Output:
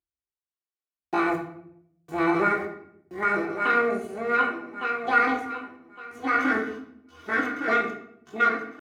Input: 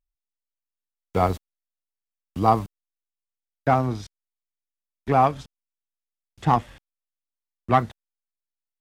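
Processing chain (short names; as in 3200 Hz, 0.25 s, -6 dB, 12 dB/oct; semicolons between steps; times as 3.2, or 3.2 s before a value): regenerating reverse delay 0.579 s, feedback 47%, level -1 dB; flange 1.1 Hz, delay 5.5 ms, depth 5.9 ms, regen +60%; pitch shift +10.5 st; limiter -15 dBFS, peak gain reduction 5.5 dB; HPF 150 Hz 12 dB/oct; high shelf 3900 Hz -11.5 dB; notches 60/120/180/240 Hz; comb 2.7 ms, depth 72%; shoebox room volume 140 m³, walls mixed, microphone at 0.85 m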